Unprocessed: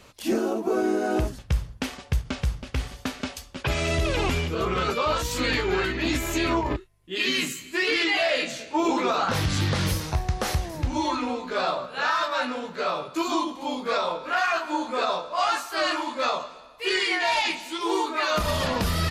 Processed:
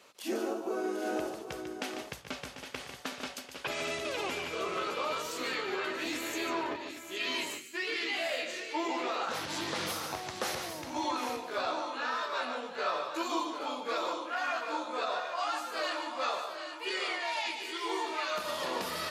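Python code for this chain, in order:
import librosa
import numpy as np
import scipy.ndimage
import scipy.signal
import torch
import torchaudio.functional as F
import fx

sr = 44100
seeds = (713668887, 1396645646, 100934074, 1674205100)

p1 = scipy.signal.sosfilt(scipy.signal.butter(2, 340.0, 'highpass', fs=sr, output='sos'), x)
p2 = fx.rider(p1, sr, range_db=3, speed_s=0.5)
p3 = p2 + fx.echo_multitap(p2, sr, ms=(147, 743, 816), db=(-8.0, -11.5, -9.5), dry=0)
y = p3 * librosa.db_to_amplitude(-8.5)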